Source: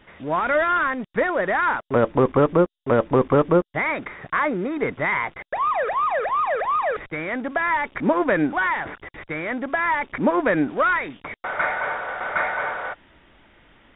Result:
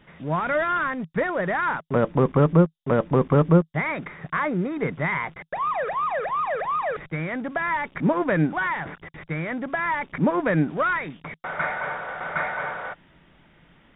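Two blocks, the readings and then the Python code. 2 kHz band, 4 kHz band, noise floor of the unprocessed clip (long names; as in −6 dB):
−3.5 dB, can't be measured, −64 dBFS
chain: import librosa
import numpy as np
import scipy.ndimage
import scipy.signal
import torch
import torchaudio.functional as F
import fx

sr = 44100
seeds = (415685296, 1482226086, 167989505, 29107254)

y = fx.peak_eq(x, sr, hz=160.0, db=14.0, octaves=0.5)
y = y * 10.0 ** (-3.5 / 20.0)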